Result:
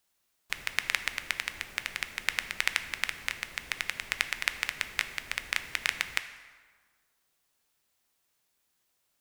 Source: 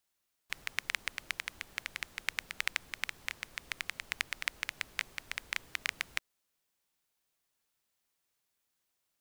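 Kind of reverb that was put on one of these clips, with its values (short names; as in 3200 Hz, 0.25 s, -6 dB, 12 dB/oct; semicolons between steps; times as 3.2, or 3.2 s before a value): plate-style reverb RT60 1.6 s, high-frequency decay 0.65×, DRR 9 dB; gain +5.5 dB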